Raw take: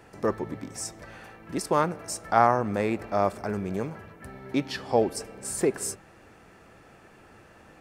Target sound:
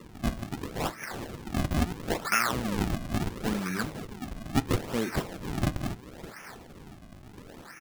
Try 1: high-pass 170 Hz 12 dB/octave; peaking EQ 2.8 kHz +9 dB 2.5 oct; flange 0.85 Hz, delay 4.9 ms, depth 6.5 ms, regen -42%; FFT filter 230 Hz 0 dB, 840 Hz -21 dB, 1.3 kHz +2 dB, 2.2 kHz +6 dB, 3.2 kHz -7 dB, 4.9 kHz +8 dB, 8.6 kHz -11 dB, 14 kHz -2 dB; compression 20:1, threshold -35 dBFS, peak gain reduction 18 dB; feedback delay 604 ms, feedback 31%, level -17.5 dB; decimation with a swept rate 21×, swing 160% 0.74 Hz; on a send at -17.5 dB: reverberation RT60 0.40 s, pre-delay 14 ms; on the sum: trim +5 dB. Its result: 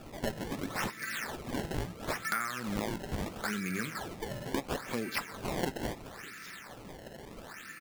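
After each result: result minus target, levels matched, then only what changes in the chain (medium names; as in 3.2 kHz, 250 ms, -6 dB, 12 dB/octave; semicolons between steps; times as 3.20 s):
compression: peak gain reduction +8 dB; decimation with a swept rate: distortion -8 dB
change: compression 20:1, threshold -26.5 dBFS, peak gain reduction 9.5 dB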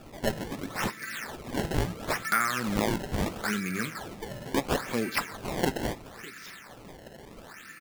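decimation with a swept rate: distortion -8 dB
change: decimation with a swept rate 55×, swing 160% 0.74 Hz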